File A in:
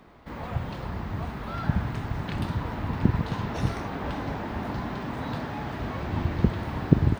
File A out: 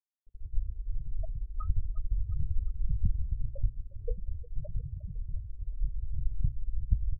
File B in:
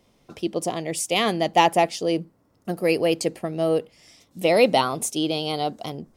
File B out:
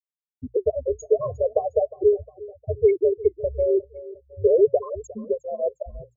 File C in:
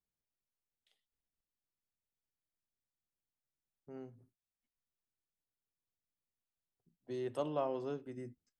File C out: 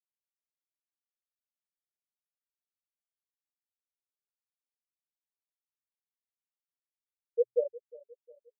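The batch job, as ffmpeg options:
-filter_complex "[0:a]lowpass=f=8.1k:w=0.5412,lowpass=f=8.1k:w=1.3066,acontrast=29,adynamicequalizer=threshold=0.0251:dfrequency=280:dqfactor=1.6:tfrequency=280:tqfactor=1.6:attack=5:release=100:ratio=0.375:range=2:mode=cutabove:tftype=bell,acompressor=threshold=-19dB:ratio=16,afreqshift=-90,aecho=1:1:1.8:0.58,afftfilt=real='re*gte(hypot(re,im),0.398)':imag='im*gte(hypot(re,im),0.398)':win_size=1024:overlap=0.75,equalizer=f=420:t=o:w=0.69:g=11.5,bandreject=f=60:t=h:w=6,bandreject=f=120:t=h:w=6,asplit=2[a][b];[b]aecho=0:1:357|714|1071:0.106|0.0455|0.0196[c];[a][c]amix=inputs=2:normalize=0,flanger=delay=1.6:depth=4.6:regen=-71:speed=0.4:shape=sinusoidal"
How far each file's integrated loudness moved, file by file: -7.5, -0.5, +8.0 LU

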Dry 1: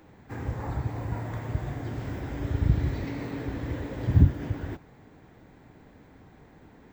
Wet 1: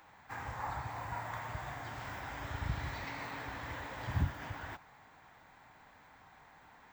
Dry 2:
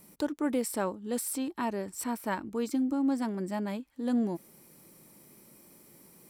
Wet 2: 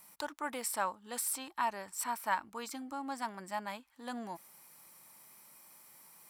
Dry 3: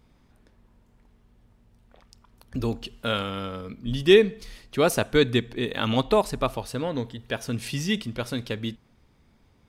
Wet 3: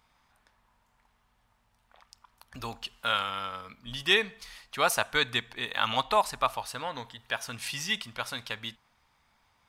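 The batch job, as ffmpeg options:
-af "lowshelf=f=590:t=q:w=1.5:g=-14"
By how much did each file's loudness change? -11.5, -6.0, -4.5 LU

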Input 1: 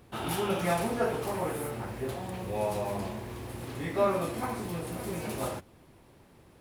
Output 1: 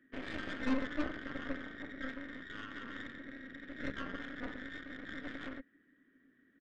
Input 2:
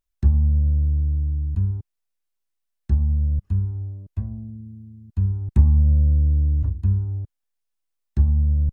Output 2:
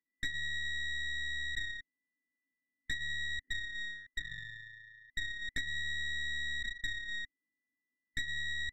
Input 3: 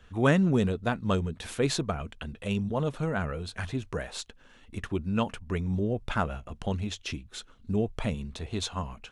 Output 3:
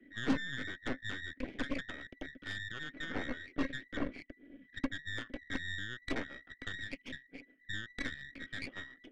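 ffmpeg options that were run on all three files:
-filter_complex "[0:a]afftfilt=real='real(if(between(b,1,1012),(2*floor((b-1)/92)+1)*92-b,b),0)':imag='imag(if(between(b,1,1012),(2*floor((b-1)/92)+1)*92-b,b),0)*if(between(b,1,1012),-1,1)':win_size=2048:overlap=0.75,acrossover=split=310[a][b];[b]acompressor=threshold=-27dB:ratio=16[c];[a][c]amix=inputs=2:normalize=0,asplit=3[d][e][f];[d]bandpass=f=270:t=q:w=8,volume=0dB[g];[e]bandpass=f=2.29k:t=q:w=8,volume=-6dB[h];[f]bandpass=f=3.01k:t=q:w=8,volume=-9dB[i];[g][h][i]amix=inputs=3:normalize=0,aresample=16000,asoftclip=type=tanh:threshold=-39.5dB,aresample=44100,adynamicsmooth=sensitivity=4.5:basefreq=770,aeval=exprs='0.0106*(cos(1*acos(clip(val(0)/0.0106,-1,1)))-cos(1*PI/2))+0.00237*(cos(8*acos(clip(val(0)/0.0106,-1,1)))-cos(8*PI/2))':c=same,volume=16.5dB"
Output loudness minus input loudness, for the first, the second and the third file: -9.5, -16.0, -10.0 LU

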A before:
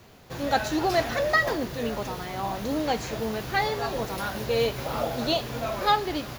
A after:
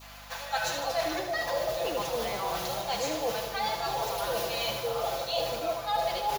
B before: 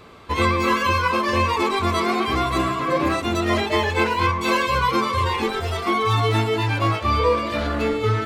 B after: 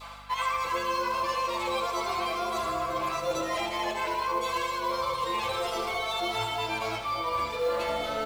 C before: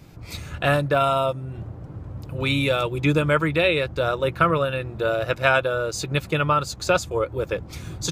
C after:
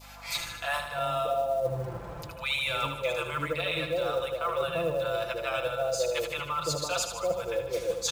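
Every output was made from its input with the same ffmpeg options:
-filter_complex "[0:a]lowshelf=f=420:t=q:w=1.5:g=-11,aecho=1:1:5.9:0.69,acrossover=split=150|690[a][b][c];[a]adelay=270[d];[b]adelay=340[e];[d][e][c]amix=inputs=3:normalize=0,areverse,acompressor=threshold=-34dB:ratio=6,areverse,adynamicequalizer=threshold=0.00224:dfrequency=1700:dqfactor=1.4:tfrequency=1700:tqfactor=1.4:attack=5:release=100:ratio=0.375:range=3.5:mode=cutabove:tftype=bell,asplit=2[f][g];[g]aecho=0:1:77|154|231|308|385|462|539|616:0.398|0.239|0.143|0.086|0.0516|0.031|0.0186|0.0111[h];[f][h]amix=inputs=2:normalize=0,aeval=exprs='val(0)+0.00126*(sin(2*PI*50*n/s)+sin(2*PI*2*50*n/s)/2+sin(2*PI*3*50*n/s)/3+sin(2*PI*4*50*n/s)/4+sin(2*PI*5*50*n/s)/5)':c=same,acrusher=bits=7:mode=log:mix=0:aa=0.000001,volume=6.5dB"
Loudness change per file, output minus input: -3.5, -8.5, -7.5 LU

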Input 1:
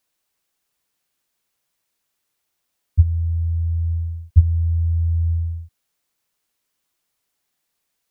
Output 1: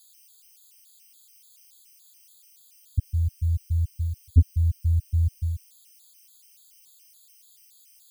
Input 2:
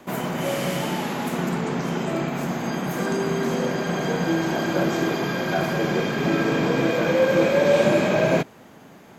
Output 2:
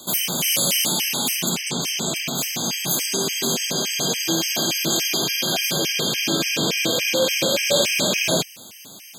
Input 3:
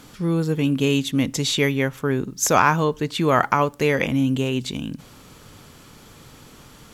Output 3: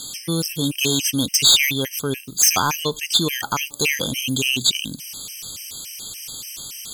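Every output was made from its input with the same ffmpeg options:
-af "aexciter=amount=4.7:drive=9.9:freq=2.5k,asoftclip=type=tanh:threshold=-6.5dB,afftfilt=real='re*gt(sin(2*PI*3.5*pts/sr)*(1-2*mod(floor(b*sr/1024/1600),2)),0)':imag='im*gt(sin(2*PI*3.5*pts/sr)*(1-2*mod(floor(b*sr/1024/1600),2)),0)':win_size=1024:overlap=0.75,volume=-1dB"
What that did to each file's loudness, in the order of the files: -5.0, +2.5, +2.5 LU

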